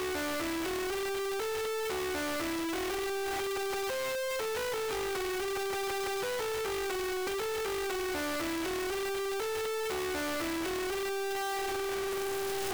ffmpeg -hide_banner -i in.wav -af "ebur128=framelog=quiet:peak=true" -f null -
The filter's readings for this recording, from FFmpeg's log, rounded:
Integrated loudness:
  I:         -33.3 LUFS
  Threshold: -43.3 LUFS
Loudness range:
  LRA:         0.1 LU
  Threshold: -53.3 LUFS
  LRA low:   -33.3 LUFS
  LRA high:  -33.2 LUFS
True peak:
  Peak:      -27.6 dBFS